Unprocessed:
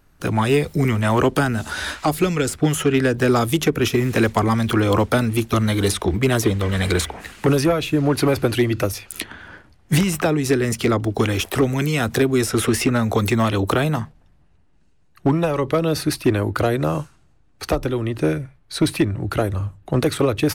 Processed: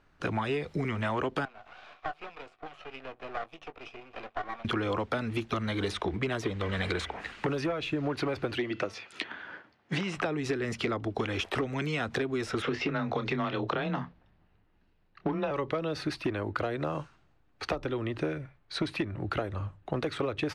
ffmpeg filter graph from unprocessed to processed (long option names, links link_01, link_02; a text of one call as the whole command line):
ffmpeg -i in.wav -filter_complex "[0:a]asettb=1/sr,asplit=3[link_01][link_02][link_03];[link_01]atrim=end=1.454[link_04];[link_02]atrim=start=1.45:end=4.65,asetpts=PTS-STARTPTS,afade=type=in:duration=0.004:curve=qsin,afade=type=out:start_time=3.196:duration=0.004:curve=qsin,asplit=3[link_05][link_06][link_07];[link_05]bandpass=frequency=730:width_type=q:width=8,volume=0dB[link_08];[link_06]bandpass=frequency=1090:width_type=q:width=8,volume=-6dB[link_09];[link_07]bandpass=frequency=2440:width_type=q:width=8,volume=-9dB[link_10];[link_08][link_09][link_10]amix=inputs=3:normalize=0,asplit=2[link_11][link_12];[link_12]adelay=19,volume=-12dB[link_13];[link_11][link_13]amix=inputs=2:normalize=0,atrim=end_sample=141120,aeval=exprs='max(val(0),0)':channel_layout=same[link_14];[link_03]atrim=start=4.646[link_15];[link_04][link_14]acrossfade=duration=0.004:curve1=hsin:curve2=qsin[link_16];[link_16][link_15]acrossfade=duration=0.004:curve1=qsin:curve2=hsin,asettb=1/sr,asplit=3[link_17][link_18][link_19];[link_17]atrim=end=8.574[link_20];[link_18]atrim=start=8.57:end=10.17,asetpts=PTS-STARTPTS,afade=type=in:duration=0.004:curve=qsin,afade=type=out:start_time=1.596:duration=0.004:curve=qsin,highpass=170,lowpass=7100,bandreject=frequency=223.1:width_type=h:width=4,bandreject=frequency=446.2:width_type=h:width=4,bandreject=frequency=669.3:width_type=h:width=4,bandreject=frequency=892.4:width_type=h:width=4,bandreject=frequency=1115.5:width_type=h:width=4,bandreject=frequency=1338.6:width_type=h:width=4,bandreject=frequency=1561.7:width_type=h:width=4,bandreject=frequency=1784.8:width_type=h:width=4,bandreject=frequency=2007.9:width_type=h:width=4,bandreject=frequency=2231:width_type=h:width=4,bandreject=frequency=2454.1:width_type=h:width=4,bandreject=frequency=2677.2:width_type=h:width=4,bandreject=frequency=2900.3:width_type=h:width=4,bandreject=frequency=3123.4:width_type=h:width=4,bandreject=frequency=3346.5:width_type=h:width=4[link_21];[link_19]atrim=start=10.166[link_22];[link_20][link_21]acrossfade=duration=0.004:curve1=hsin:curve2=qsin[link_23];[link_23][link_22]acrossfade=duration=0.004:curve1=qsin:curve2=hsin,asettb=1/sr,asplit=3[link_24][link_25][link_26];[link_24]atrim=end=12.624[link_27];[link_25]atrim=start=12.62:end=15.51,asetpts=PTS-STARTPTS,afade=type=in:duration=0.004:curve=qsin,afade=type=out:start_time=2.886:duration=0.004:curve=qsin,lowpass=frequency=5400:width=0.5412,lowpass=frequency=5400:width=1.3066,afreqshift=21,asplit=2[link_28][link_29];[link_29]adelay=28,volume=-11dB[link_30];[link_28][link_30]amix=inputs=2:normalize=0,atrim=end_sample=127449[link_31];[link_26]atrim=start=15.506[link_32];[link_27][link_31]acrossfade=duration=0.004:curve1=hsin:curve2=qsin[link_33];[link_33][link_32]acrossfade=duration=0.004:curve1=qsin:curve2=hsin,lowpass=3700,lowshelf=frequency=300:gain=-8,acompressor=threshold=-25dB:ratio=6,volume=-2.5dB" out.wav